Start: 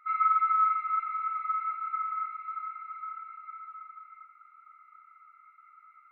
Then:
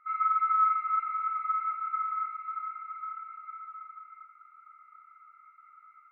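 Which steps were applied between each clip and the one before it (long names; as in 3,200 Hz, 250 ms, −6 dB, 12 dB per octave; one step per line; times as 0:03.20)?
low-pass filter 1,400 Hz 6 dB per octave
automatic gain control gain up to 3.5 dB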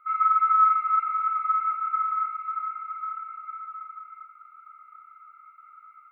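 phaser with its sweep stopped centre 1,200 Hz, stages 8
level +6 dB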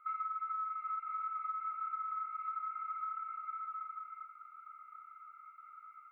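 downward compressor 16 to 1, threshold −32 dBFS, peak gain reduction 18 dB
level −4 dB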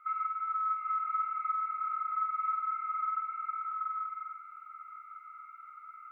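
parametric band 1,900 Hz +6 dB 1.3 octaves
flutter between parallel walls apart 8.5 metres, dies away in 0.68 s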